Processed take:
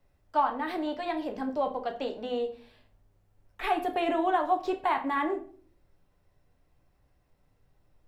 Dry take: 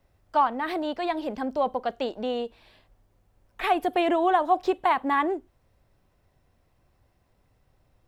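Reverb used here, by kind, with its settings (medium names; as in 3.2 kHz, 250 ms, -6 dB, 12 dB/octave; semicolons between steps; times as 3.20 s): simulated room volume 38 m³, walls mixed, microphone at 0.38 m; trim -5.5 dB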